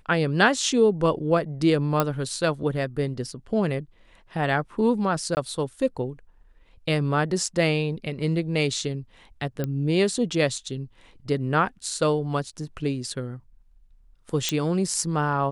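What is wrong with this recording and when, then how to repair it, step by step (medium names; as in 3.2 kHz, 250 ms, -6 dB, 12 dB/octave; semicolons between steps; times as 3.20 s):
2.00 s: pop -7 dBFS
5.35–5.37 s: dropout 19 ms
9.64 s: pop -15 dBFS
14.49 s: pop -9 dBFS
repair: de-click; interpolate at 5.35 s, 19 ms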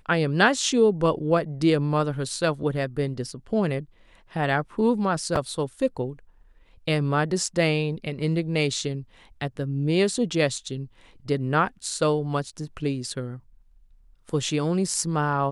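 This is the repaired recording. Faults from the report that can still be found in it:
nothing left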